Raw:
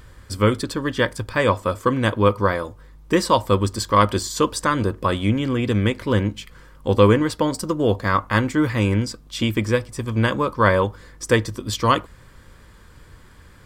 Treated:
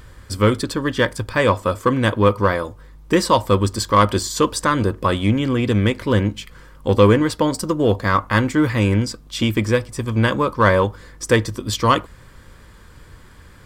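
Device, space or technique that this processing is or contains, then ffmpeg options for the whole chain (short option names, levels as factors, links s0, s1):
parallel distortion: -filter_complex "[0:a]asplit=2[s0][s1];[s1]asoftclip=type=hard:threshold=0.178,volume=0.355[s2];[s0][s2]amix=inputs=2:normalize=0"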